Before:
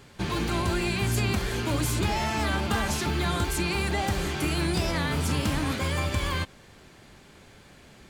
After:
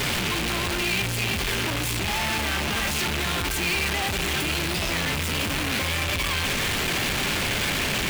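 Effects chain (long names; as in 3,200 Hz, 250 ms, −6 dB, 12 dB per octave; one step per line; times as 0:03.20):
sign of each sample alone
parametric band 2,600 Hz +8 dB 1.2 octaves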